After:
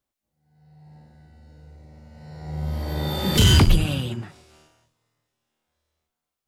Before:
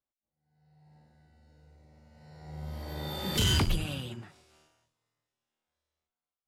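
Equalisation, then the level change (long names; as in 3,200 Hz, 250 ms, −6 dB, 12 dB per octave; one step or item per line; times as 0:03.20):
low-shelf EQ 390 Hz +4.5 dB
+8.0 dB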